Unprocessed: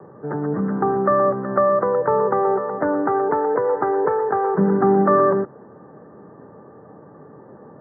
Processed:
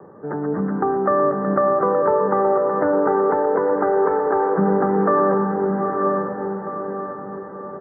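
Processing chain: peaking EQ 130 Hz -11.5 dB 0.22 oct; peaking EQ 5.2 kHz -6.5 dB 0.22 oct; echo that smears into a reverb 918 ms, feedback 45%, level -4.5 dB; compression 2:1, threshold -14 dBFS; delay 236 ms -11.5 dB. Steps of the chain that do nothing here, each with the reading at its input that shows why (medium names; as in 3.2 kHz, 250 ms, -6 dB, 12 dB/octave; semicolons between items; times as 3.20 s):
peaking EQ 5.2 kHz: input has nothing above 1.8 kHz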